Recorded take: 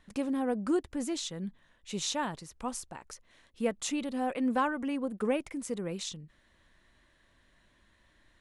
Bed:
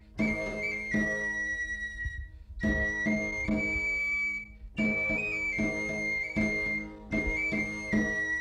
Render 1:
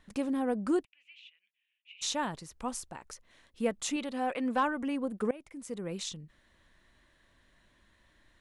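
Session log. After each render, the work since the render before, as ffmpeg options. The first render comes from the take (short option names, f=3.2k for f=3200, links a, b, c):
-filter_complex "[0:a]asplit=3[a][b][c];[a]afade=t=out:st=0.83:d=0.02[d];[b]asuperpass=centerf=2600:order=4:qfactor=4.3,afade=t=in:st=0.83:d=0.02,afade=t=out:st=2.01:d=0.02[e];[c]afade=t=in:st=2.01:d=0.02[f];[d][e][f]amix=inputs=3:normalize=0,asettb=1/sr,asplit=3[g][h][i];[g]atrim=end=3.964[j];[h]atrim=start=3.96:end=4.63,asetpts=PTS-STARTPTS,afade=t=in:d=0.004:c=qsin,afade=t=out:st=0.666:d=0.004:c=qsin,asplit=2[k][l];[l]highpass=f=720:p=1,volume=7dB,asoftclip=type=tanh:threshold=-18dB[m];[k][m]amix=inputs=2:normalize=0,lowpass=f=5k:p=1,volume=-6dB[n];[i]atrim=start=4.626[o];[j][n]acrossfade=d=0.004:c1=hsin:c2=qsin[p];[p][o]acrossfade=d=0.004:c1=qsin:c2=hsin,asplit=2[q][r];[q]atrim=end=5.31,asetpts=PTS-STARTPTS,afade=t=out:st=5.306:d=0.004:c=hsin:silence=0.0944061[s];[r]atrim=start=5.31,asetpts=PTS-STARTPTS,afade=t=in:d=0.69:silence=0.0944061[t];[s][t]concat=n=2:v=0:a=1"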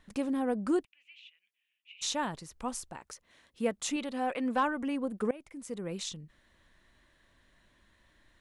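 -filter_complex "[0:a]asettb=1/sr,asplit=3[a][b][c];[a]atrim=end=3.004[d];[b]atrim=start=3:end=3.86,asetpts=PTS-STARTPTS,afade=t=in:d=0.004:c=qsin,afade=t=out:st=0.856:d=0.004:c=qsin,highpass=f=80:p=1[e];[c]atrim=start=3.856[f];[d][e]acrossfade=d=0.004:c1=hsin:c2=qsin[g];[g][f]acrossfade=d=0.004:c1=qsin:c2=hsin"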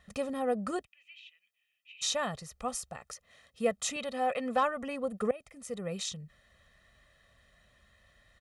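-af "highpass=41,aecho=1:1:1.6:0.77"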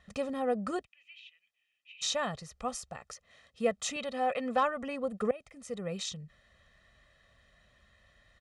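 -af "lowpass=7.6k"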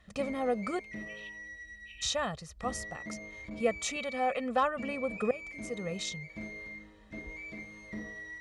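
-filter_complex "[1:a]volume=-13.5dB[a];[0:a][a]amix=inputs=2:normalize=0"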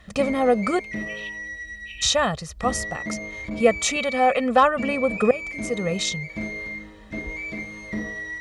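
-af "volume=11.5dB"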